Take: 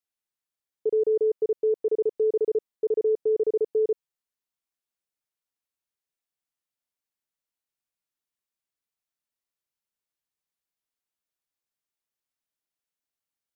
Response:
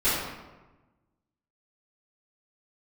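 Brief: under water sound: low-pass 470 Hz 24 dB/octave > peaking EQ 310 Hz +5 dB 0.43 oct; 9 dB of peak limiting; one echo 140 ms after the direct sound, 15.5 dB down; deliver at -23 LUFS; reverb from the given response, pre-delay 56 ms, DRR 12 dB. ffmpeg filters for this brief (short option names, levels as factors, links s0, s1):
-filter_complex "[0:a]alimiter=level_in=1.5:limit=0.0631:level=0:latency=1,volume=0.668,aecho=1:1:140:0.168,asplit=2[s0][s1];[1:a]atrim=start_sample=2205,adelay=56[s2];[s1][s2]afir=irnorm=-1:irlink=0,volume=0.0473[s3];[s0][s3]amix=inputs=2:normalize=0,lowpass=f=470:w=0.5412,lowpass=f=470:w=1.3066,equalizer=f=310:t=o:w=0.43:g=5,volume=3.35"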